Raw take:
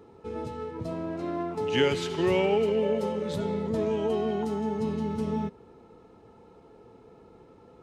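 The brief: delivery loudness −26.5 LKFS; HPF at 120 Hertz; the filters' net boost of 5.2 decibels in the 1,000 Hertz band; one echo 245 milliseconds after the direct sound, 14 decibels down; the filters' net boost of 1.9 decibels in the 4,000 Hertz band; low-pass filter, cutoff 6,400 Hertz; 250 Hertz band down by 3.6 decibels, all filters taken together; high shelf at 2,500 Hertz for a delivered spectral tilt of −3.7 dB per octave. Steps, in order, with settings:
high-pass filter 120 Hz
low-pass filter 6,400 Hz
parametric band 250 Hz −5 dB
parametric band 1,000 Hz +7.5 dB
high-shelf EQ 2,500 Hz −7 dB
parametric band 4,000 Hz +9 dB
single-tap delay 245 ms −14 dB
level +2.5 dB

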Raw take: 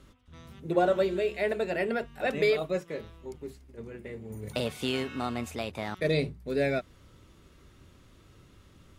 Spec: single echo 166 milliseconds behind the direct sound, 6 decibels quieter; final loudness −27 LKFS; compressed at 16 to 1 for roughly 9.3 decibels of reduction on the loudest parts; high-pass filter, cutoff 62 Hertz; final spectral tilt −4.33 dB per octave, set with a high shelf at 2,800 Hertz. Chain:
high-pass filter 62 Hz
high-shelf EQ 2,800 Hz +8.5 dB
downward compressor 16 to 1, threshold −28 dBFS
single-tap delay 166 ms −6 dB
level +7 dB

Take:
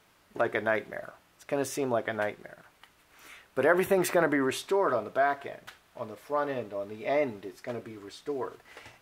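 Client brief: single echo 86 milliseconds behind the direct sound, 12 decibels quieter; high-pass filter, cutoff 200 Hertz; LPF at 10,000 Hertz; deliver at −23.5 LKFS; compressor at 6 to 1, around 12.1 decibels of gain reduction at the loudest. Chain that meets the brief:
high-pass filter 200 Hz
low-pass filter 10,000 Hz
downward compressor 6 to 1, threshold −33 dBFS
single-tap delay 86 ms −12 dB
level +15.5 dB

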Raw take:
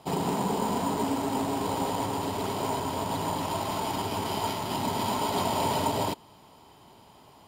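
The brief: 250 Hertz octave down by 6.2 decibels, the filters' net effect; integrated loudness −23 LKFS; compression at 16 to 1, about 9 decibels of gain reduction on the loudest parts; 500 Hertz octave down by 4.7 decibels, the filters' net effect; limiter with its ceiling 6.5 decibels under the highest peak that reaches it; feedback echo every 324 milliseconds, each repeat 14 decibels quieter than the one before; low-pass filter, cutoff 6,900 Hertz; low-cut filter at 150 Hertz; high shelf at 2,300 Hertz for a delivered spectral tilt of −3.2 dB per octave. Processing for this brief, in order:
high-pass filter 150 Hz
low-pass filter 6,900 Hz
parametric band 250 Hz −5.5 dB
parametric band 500 Hz −5 dB
high-shelf EQ 2,300 Hz +4 dB
downward compressor 16 to 1, threshold −33 dBFS
brickwall limiter −30.5 dBFS
repeating echo 324 ms, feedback 20%, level −14 dB
level +16.5 dB

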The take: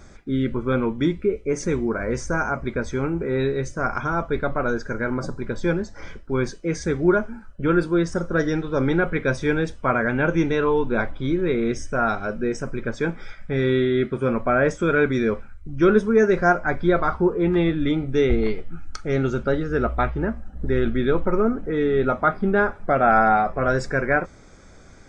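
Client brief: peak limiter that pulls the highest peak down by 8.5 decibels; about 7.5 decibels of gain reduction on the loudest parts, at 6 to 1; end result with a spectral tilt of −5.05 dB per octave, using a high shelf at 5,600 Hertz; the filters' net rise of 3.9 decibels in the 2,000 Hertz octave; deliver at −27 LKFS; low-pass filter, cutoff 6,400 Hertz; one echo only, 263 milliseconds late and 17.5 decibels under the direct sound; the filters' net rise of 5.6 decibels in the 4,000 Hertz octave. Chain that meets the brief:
low-pass filter 6,400 Hz
parametric band 2,000 Hz +4.5 dB
parametric band 4,000 Hz +4 dB
high-shelf EQ 5,600 Hz +5.5 dB
downward compressor 6 to 1, threshold −19 dBFS
brickwall limiter −17 dBFS
single-tap delay 263 ms −17.5 dB

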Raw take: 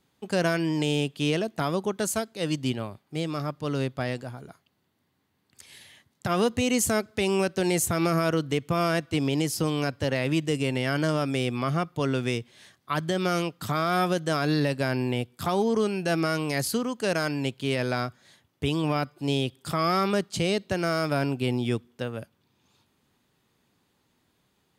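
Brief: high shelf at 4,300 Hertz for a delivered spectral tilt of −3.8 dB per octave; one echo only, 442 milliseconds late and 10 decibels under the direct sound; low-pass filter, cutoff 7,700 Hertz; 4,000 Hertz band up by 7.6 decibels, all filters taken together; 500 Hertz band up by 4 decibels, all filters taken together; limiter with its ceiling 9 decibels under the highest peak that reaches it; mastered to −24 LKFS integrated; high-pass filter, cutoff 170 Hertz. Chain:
high-pass filter 170 Hz
low-pass filter 7,700 Hz
parametric band 500 Hz +5 dB
parametric band 4,000 Hz +6 dB
high-shelf EQ 4,300 Hz +8 dB
brickwall limiter −16 dBFS
single-tap delay 442 ms −10 dB
level +3.5 dB

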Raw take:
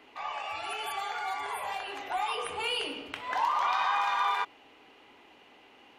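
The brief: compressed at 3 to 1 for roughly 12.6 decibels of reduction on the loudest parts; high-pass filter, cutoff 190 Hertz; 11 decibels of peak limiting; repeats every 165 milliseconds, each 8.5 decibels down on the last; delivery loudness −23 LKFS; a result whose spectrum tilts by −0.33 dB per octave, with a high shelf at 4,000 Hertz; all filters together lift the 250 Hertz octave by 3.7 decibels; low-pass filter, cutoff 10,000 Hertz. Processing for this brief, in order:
high-pass filter 190 Hz
low-pass filter 10,000 Hz
parametric band 250 Hz +5.5 dB
high-shelf EQ 4,000 Hz +8.5 dB
downward compressor 3 to 1, threshold −41 dBFS
brickwall limiter −34.5 dBFS
repeating echo 165 ms, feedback 38%, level −8.5 dB
level +20 dB

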